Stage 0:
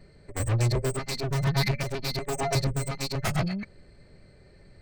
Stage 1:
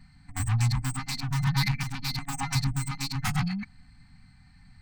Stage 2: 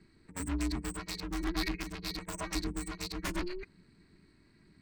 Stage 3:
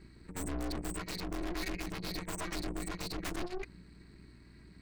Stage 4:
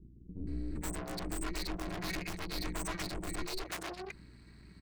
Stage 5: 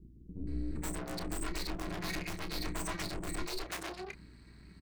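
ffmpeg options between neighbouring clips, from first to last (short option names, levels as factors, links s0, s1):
-af "afftfilt=real='re*(1-between(b*sr/4096,280,720))':imag='im*(1-between(b*sr/4096,280,720))':win_size=4096:overlap=0.75"
-af "lowshelf=f=110:g=-4.5,aeval=exprs='val(0)*sin(2*PI*180*n/s)':c=same,volume=0.668"
-af "aeval=exprs='(tanh(158*val(0)+0.7)-tanh(0.7))/158':c=same,aeval=exprs='val(0)+0.000562*(sin(2*PI*60*n/s)+sin(2*PI*2*60*n/s)/2+sin(2*PI*3*60*n/s)/3+sin(2*PI*4*60*n/s)/4+sin(2*PI*5*60*n/s)/5)':c=same,volume=2.66"
-filter_complex "[0:a]acrossover=split=360[s0][s1];[s1]adelay=470[s2];[s0][s2]amix=inputs=2:normalize=0,volume=1.12"
-filter_complex "[0:a]asplit=2[s0][s1];[s1]adelay=30,volume=0.299[s2];[s0][s2]amix=inputs=2:normalize=0"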